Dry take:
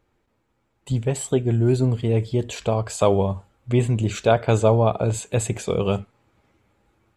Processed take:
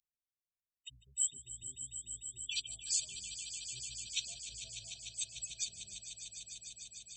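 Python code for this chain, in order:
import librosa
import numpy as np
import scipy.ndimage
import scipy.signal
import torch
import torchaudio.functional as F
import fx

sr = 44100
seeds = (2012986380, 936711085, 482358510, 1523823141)

y = fx.octave_divider(x, sr, octaves=1, level_db=1.0)
y = scipy.signal.sosfilt(scipy.signal.butter(2, 6200.0, 'lowpass', fs=sr, output='sos'), y)
y = fx.spec_gate(y, sr, threshold_db=-10, keep='strong')
y = scipy.signal.sosfilt(scipy.signal.cheby2(4, 50, 1300.0, 'highpass', fs=sr, output='sos'), y)
y = fx.echo_swell(y, sr, ms=149, loudest=5, wet_db=-12.0)
y = y * 10.0 ** (7.0 / 20.0)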